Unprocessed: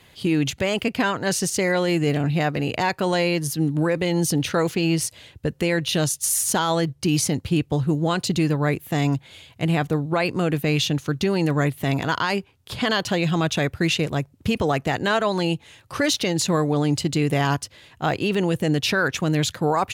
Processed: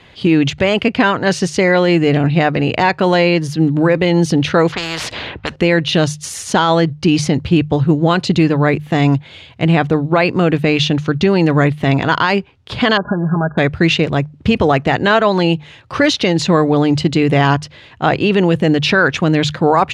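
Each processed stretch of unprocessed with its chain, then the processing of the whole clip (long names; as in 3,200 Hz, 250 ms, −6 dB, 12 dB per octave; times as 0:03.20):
0:04.72–0:05.56: low-pass that shuts in the quiet parts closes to 1,500 Hz, open at −17.5 dBFS + every bin compressed towards the loudest bin 4 to 1
0:12.97–0:13.58: comb filter 4.9 ms, depth 94% + downward compressor 5 to 1, threshold −21 dBFS + linear-phase brick-wall low-pass 1,700 Hz
whole clip: low-pass filter 3,900 Hz 12 dB per octave; mains-hum notches 50/100/150 Hz; level +9 dB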